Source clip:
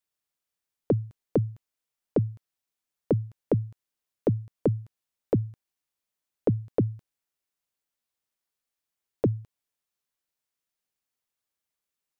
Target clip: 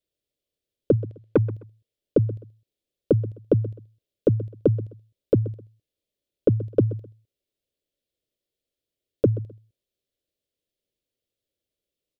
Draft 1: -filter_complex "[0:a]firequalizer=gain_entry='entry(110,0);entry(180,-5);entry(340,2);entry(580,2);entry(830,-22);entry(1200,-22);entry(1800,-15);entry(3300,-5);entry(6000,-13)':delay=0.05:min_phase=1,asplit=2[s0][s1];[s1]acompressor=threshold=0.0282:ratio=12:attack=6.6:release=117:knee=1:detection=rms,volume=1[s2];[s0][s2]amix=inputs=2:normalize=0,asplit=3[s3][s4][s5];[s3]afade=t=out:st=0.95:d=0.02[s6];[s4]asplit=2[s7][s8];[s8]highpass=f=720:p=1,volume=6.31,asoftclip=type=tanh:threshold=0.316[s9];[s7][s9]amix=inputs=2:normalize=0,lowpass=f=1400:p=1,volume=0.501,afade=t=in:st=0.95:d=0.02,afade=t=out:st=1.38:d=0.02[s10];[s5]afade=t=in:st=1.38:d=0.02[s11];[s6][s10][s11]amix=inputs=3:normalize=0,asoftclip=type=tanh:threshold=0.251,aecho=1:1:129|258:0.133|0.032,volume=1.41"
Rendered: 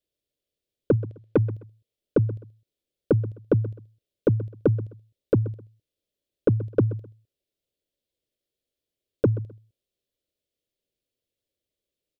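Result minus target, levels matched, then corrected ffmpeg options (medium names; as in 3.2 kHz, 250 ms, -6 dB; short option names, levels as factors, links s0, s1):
saturation: distortion +15 dB
-filter_complex "[0:a]firequalizer=gain_entry='entry(110,0);entry(180,-5);entry(340,2);entry(580,2);entry(830,-22);entry(1200,-22);entry(1800,-15);entry(3300,-5);entry(6000,-13)':delay=0.05:min_phase=1,asplit=2[s0][s1];[s1]acompressor=threshold=0.0282:ratio=12:attack=6.6:release=117:knee=1:detection=rms,volume=1[s2];[s0][s2]amix=inputs=2:normalize=0,asplit=3[s3][s4][s5];[s3]afade=t=out:st=0.95:d=0.02[s6];[s4]asplit=2[s7][s8];[s8]highpass=f=720:p=1,volume=6.31,asoftclip=type=tanh:threshold=0.316[s9];[s7][s9]amix=inputs=2:normalize=0,lowpass=f=1400:p=1,volume=0.501,afade=t=in:st=0.95:d=0.02,afade=t=out:st=1.38:d=0.02[s10];[s5]afade=t=in:st=1.38:d=0.02[s11];[s6][s10][s11]amix=inputs=3:normalize=0,asoftclip=type=tanh:threshold=0.668,aecho=1:1:129|258:0.133|0.032,volume=1.41"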